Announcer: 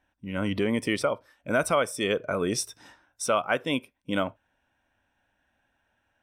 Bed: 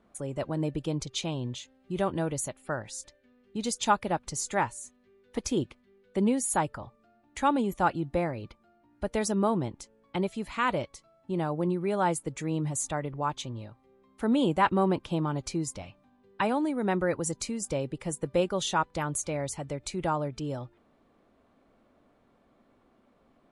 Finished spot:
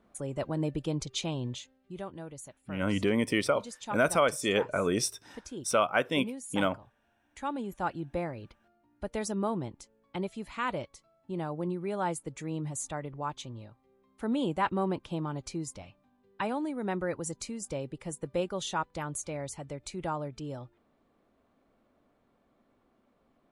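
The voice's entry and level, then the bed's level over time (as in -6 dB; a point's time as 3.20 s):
2.45 s, -1.0 dB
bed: 1.57 s -1 dB
2.09 s -13 dB
7.00 s -13 dB
8.10 s -5 dB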